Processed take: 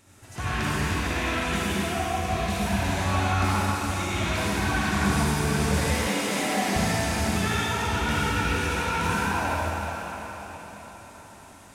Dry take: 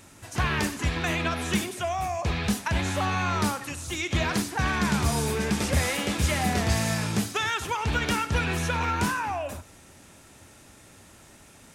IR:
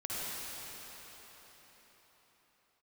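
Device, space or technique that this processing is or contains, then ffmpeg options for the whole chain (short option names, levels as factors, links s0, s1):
cathedral: -filter_complex "[1:a]atrim=start_sample=2205[s0];[0:a][s0]afir=irnorm=-1:irlink=0,asettb=1/sr,asplit=3[s1][s2][s3];[s1]atrim=end=6.074[s4];[s2]atrim=start=6.07:end=6.76,asetpts=PTS-STARTPTS,afade=t=in:d=0.004:c=qsin,afade=t=out:st=0.686:d=0.004:c=qsin,highpass=f=180:w=0.5412,highpass=f=180:w=1.3066[s5];[s3]atrim=start=6.756[s6];[s4][s5]acrossfade=d=0.004:c1=hsin:c2=qsin[s7];[s7][s6]acrossfade=d=0.004:c1=qsin:c2=hsin,volume=0.668"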